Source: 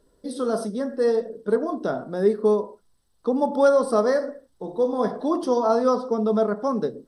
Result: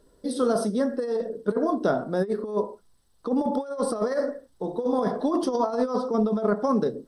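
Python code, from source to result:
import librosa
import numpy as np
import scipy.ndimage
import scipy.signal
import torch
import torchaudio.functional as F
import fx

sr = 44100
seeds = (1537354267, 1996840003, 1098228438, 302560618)

y = fx.over_compress(x, sr, threshold_db=-23.0, ratio=-0.5)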